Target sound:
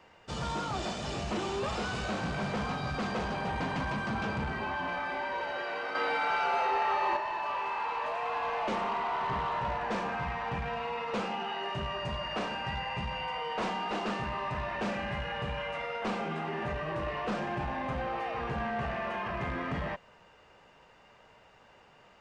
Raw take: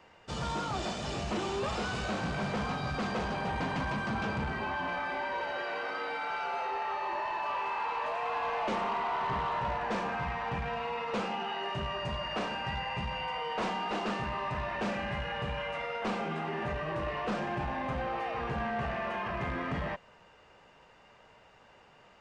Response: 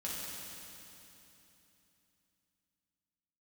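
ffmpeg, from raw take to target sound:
-filter_complex "[0:a]asettb=1/sr,asplit=3[s0][s1][s2];[s0]atrim=end=5.954[s3];[s1]atrim=start=5.95:end=7.17,asetpts=PTS-STARTPTS,afade=t=in:d=0.004:c=qsin,afade=t=out:st=1.216:d=0.004:c=qsin,acontrast=38[s4];[s2]atrim=start=7.166[s5];[s3][s4]acrossfade=d=0.004:c1=hsin:c2=qsin[s6];[s6][s5]acrossfade=d=0.004:c1=qsin:c2=hsin"

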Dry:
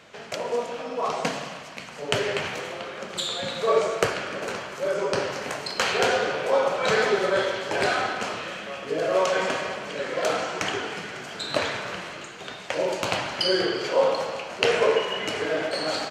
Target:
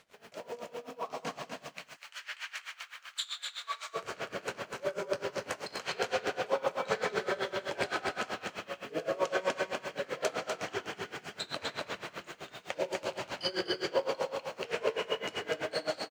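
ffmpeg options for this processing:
-filter_complex "[0:a]asplit=3[s0][s1][s2];[s0]afade=t=out:st=1.71:d=0.02[s3];[s1]highpass=f=1200:w=0.5412,highpass=f=1200:w=1.3066,afade=t=in:st=1.71:d=0.02,afade=t=out:st=3.93:d=0.02[s4];[s2]afade=t=in:st=3.93:d=0.02[s5];[s3][s4][s5]amix=inputs=3:normalize=0,alimiter=limit=0.211:level=0:latency=1:release=186,dynaudnorm=f=930:g=3:m=1.58,acrusher=bits=7:mix=0:aa=0.5,aecho=1:1:247:0.596,aeval=exprs='val(0)*pow(10,-21*(0.5-0.5*cos(2*PI*7.8*n/s))/20)':c=same,volume=0.398"

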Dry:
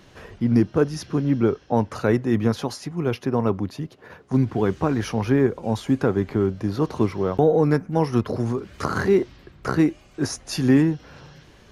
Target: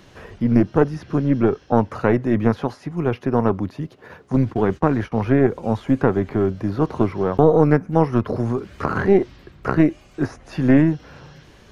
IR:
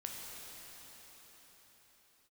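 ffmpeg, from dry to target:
-filter_complex "[0:a]acrossover=split=2600[s0][s1];[s1]acompressor=threshold=0.00178:ratio=4:attack=1:release=60[s2];[s0][s2]amix=inputs=2:normalize=0,aeval=exprs='0.447*(cos(1*acos(clip(val(0)/0.447,-1,1)))-cos(1*PI/2))+0.112*(cos(2*acos(clip(val(0)/0.447,-1,1)))-cos(2*PI/2))':c=same,asettb=1/sr,asplit=3[s3][s4][s5];[s3]atrim=end=4.364[s6];[s4]atrim=start=4.36:end=5.12,asetpts=PTS-STARTPTS,afade=t=in:d=0.004:c=qsin,afade=t=out:st=0.756:d=0.004:c=qsin,agate=range=0.0631:threshold=0.0447:ratio=16:detection=peak[s7];[s5]atrim=start=5.116[s8];[s6][s7]acrossfade=d=0.004:c1=hsin:c2=qsin[s9];[s9][s8]acrossfade=d=0.004:c1=qsin:c2=hsin,volume=1.33"

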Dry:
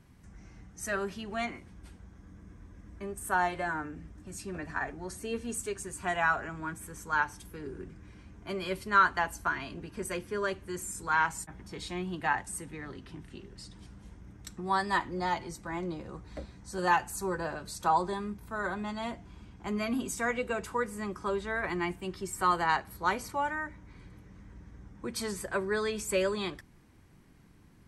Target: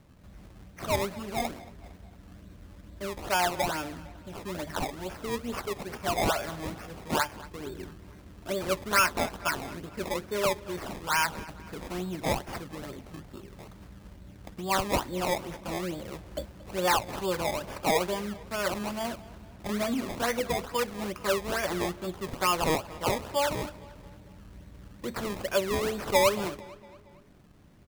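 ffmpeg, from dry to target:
-filter_complex "[0:a]equalizer=f=590:t=o:w=0.26:g=11,acrusher=samples=21:mix=1:aa=0.000001:lfo=1:lforange=21:lforate=2.3,asoftclip=type=tanh:threshold=0.15,asplit=2[s0][s1];[s1]adelay=228,lowpass=f=5000:p=1,volume=0.112,asplit=2[s2][s3];[s3]adelay=228,lowpass=f=5000:p=1,volume=0.53,asplit=2[s4][s5];[s5]adelay=228,lowpass=f=5000:p=1,volume=0.53,asplit=2[s6][s7];[s7]adelay=228,lowpass=f=5000:p=1,volume=0.53[s8];[s2][s4][s6][s8]amix=inputs=4:normalize=0[s9];[s0][s9]amix=inputs=2:normalize=0,volume=1.19"

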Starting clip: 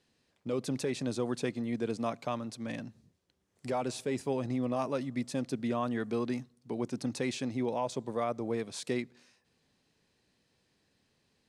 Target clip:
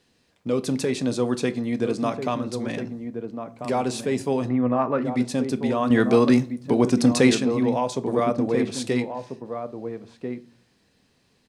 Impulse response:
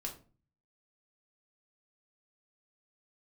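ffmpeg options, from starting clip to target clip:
-filter_complex "[0:a]asplit=3[s0][s1][s2];[s0]afade=t=out:st=4.48:d=0.02[s3];[s1]lowpass=f=1600:t=q:w=1.6,afade=t=in:st=4.48:d=0.02,afade=t=out:st=5.04:d=0.02[s4];[s2]afade=t=in:st=5.04:d=0.02[s5];[s3][s4][s5]amix=inputs=3:normalize=0,asettb=1/sr,asplit=3[s6][s7][s8];[s6]atrim=end=5.904[s9];[s7]atrim=start=5.9:end=7.35,asetpts=PTS-STARTPTS,afade=t=in:d=0.004:c=qsin,afade=t=out:st=1.446:d=0.004:c=qsin,acontrast=84[s10];[s8]atrim=start=7.346[s11];[s9][s10]acrossfade=d=0.004:c1=hsin:c2=qsin[s12];[s12][s11]acrossfade=d=0.004:c1=qsin:c2=hsin,asplit=2[s13][s14];[s14]adelay=1341,volume=0.447,highshelf=f=4000:g=-30.2[s15];[s13][s15]amix=inputs=2:normalize=0,asplit=2[s16][s17];[1:a]atrim=start_sample=2205[s18];[s17][s18]afir=irnorm=-1:irlink=0,volume=0.562[s19];[s16][s19]amix=inputs=2:normalize=0,volume=1.88"

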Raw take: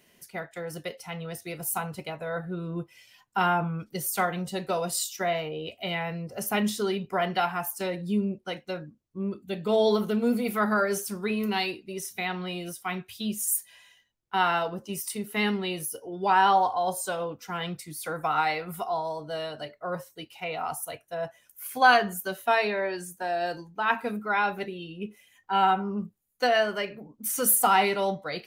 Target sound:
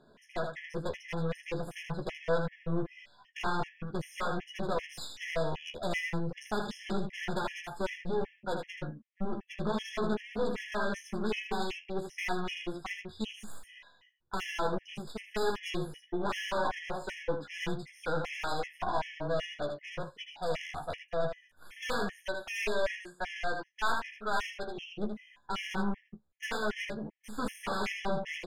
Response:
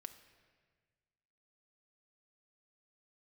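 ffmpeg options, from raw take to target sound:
-filter_complex "[0:a]aeval=exprs='if(lt(val(0),0),0.708*val(0),val(0))':c=same,asettb=1/sr,asplit=3[s0][s1][s2];[s0]atrim=end=22.264[s3];[s1]atrim=start=22.26:end=24.78,asetpts=PTS-STARTPTS,afade=t=in:d=0.004:c=qsin,afade=t=out:st=2.516:d=0.004:c=qsin,highpass=f=790:p=1[s4];[s2]atrim=start=24.776[s5];[s3][s4]acrossfade=d=0.004:c1=hsin:c2=qsin[s6];[s6][s5]acrossfade=d=0.004:c1=qsin:c2=hsin,afftfilt=real='re*lt(hypot(re,im),0.355)':imag='im*lt(hypot(re,im),0.355)':win_size=1024:overlap=0.75,lowpass=2800,alimiter=limit=0.0794:level=0:latency=1:release=274,aeval=exprs='(tanh(79.4*val(0)+0.75)-tanh(0.75))/79.4':c=same,asplit=2[s7][s8];[s8]adelay=14,volume=0.473[s9];[s7][s9]amix=inputs=2:normalize=0,aecho=1:1:12|79:0.158|0.501,afftfilt=real='re*gt(sin(2*PI*2.6*pts/sr)*(1-2*mod(floor(b*sr/1024/1700),2)),0)':imag='im*gt(sin(2*PI*2.6*pts/sr)*(1-2*mod(floor(b*sr/1024/1700),2)),0)':win_size=1024:overlap=0.75,volume=2.82"

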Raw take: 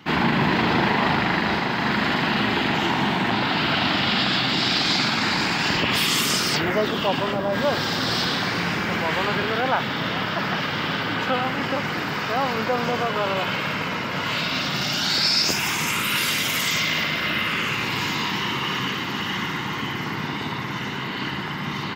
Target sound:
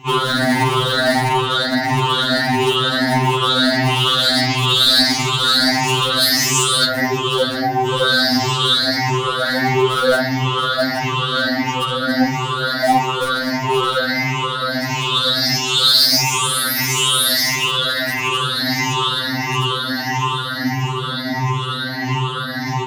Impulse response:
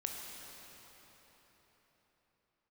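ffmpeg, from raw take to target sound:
-filter_complex "[0:a]afftfilt=real='re*pow(10,23/40*sin(2*PI*(0.7*log(max(b,1)*sr/1024/100)/log(2)-(1.6)*(pts-256)/sr)))':imag='im*pow(10,23/40*sin(2*PI*(0.7*log(max(b,1)*sr/1024/100)/log(2)-(1.6)*(pts-256)/sr)))':win_size=1024:overlap=0.75,asplit=2[s0][s1];[s1]aeval=exprs='(mod(2.51*val(0)+1,2)-1)/2.51':c=same,volume=0.282[s2];[s0][s2]amix=inputs=2:normalize=0,equalizer=f=2500:t=o:w=0.33:g=-11,equalizer=f=4000:t=o:w=0.33:g=7,equalizer=f=10000:t=o:w=0.33:g=10,asoftclip=type=tanh:threshold=0.473,bandreject=f=62.5:t=h:w=4,bandreject=f=125:t=h:w=4,bandreject=f=187.5:t=h:w=4,bandreject=f=250:t=h:w=4,bandreject=f=312.5:t=h:w=4,bandreject=f=375:t=h:w=4,bandreject=f=437.5:t=h:w=4,bandreject=f=500:t=h:w=4,bandreject=f=562.5:t=h:w=4,bandreject=f=625:t=h:w=4,bandreject=f=687.5:t=h:w=4,bandreject=f=750:t=h:w=4,bandreject=f=812.5:t=h:w=4,bandreject=f=875:t=h:w=4,bandreject=f=937.5:t=h:w=4,bandreject=f=1000:t=h:w=4,bandreject=f=1062.5:t=h:w=4,bandreject=f=1125:t=h:w=4,bandreject=f=1187.5:t=h:w=4,bandreject=f=1250:t=h:w=4,bandreject=f=1312.5:t=h:w=4,bandreject=f=1375:t=h:w=4,bandreject=f=1437.5:t=h:w=4,bandreject=f=1500:t=h:w=4,bandreject=f=1562.5:t=h:w=4,bandreject=f=1625:t=h:w=4,bandreject=f=1687.5:t=h:w=4,bandreject=f=1750:t=h:w=4,bandreject=f=1812.5:t=h:w=4,bandreject=f=1875:t=h:w=4,bandreject=f=1937.5:t=h:w=4,asetrate=42336,aresample=44100,afftfilt=real='re*2.45*eq(mod(b,6),0)':imag='im*2.45*eq(mod(b,6),0)':win_size=2048:overlap=0.75,volume=1.26"

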